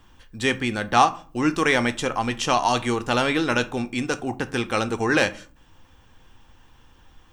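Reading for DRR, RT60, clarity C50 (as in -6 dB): 10.0 dB, 0.40 s, 18.5 dB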